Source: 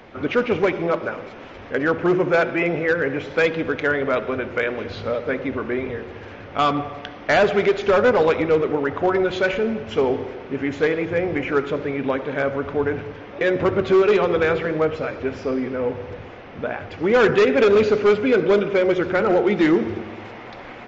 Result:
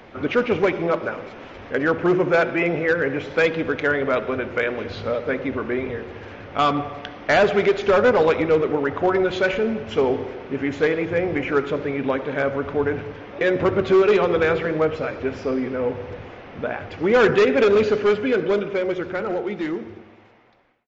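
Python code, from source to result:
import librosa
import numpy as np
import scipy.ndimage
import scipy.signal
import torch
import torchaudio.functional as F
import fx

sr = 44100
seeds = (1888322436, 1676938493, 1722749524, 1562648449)

y = fx.fade_out_tail(x, sr, length_s=3.61)
y = fx.small_body(y, sr, hz=(1700.0, 3000.0), ring_ms=45, db=10, at=(17.86, 18.49))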